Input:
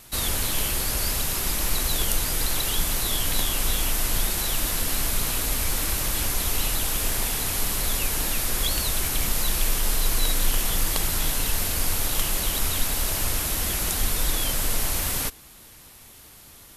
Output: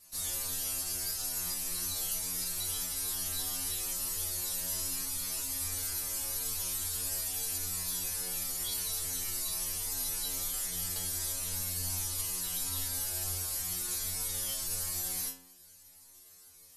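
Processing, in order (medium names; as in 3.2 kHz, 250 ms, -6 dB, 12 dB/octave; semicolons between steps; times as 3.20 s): high-order bell 7.4 kHz +9.5 dB; inharmonic resonator 88 Hz, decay 0.82 s, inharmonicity 0.002; trim -2.5 dB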